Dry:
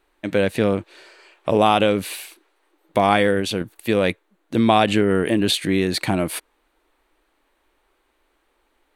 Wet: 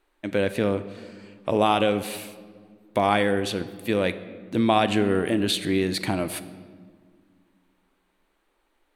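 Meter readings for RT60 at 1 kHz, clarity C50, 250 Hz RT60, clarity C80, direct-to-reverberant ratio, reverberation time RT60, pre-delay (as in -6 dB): 1.6 s, 13.5 dB, 2.5 s, 15.0 dB, 11.5 dB, 1.7 s, 3 ms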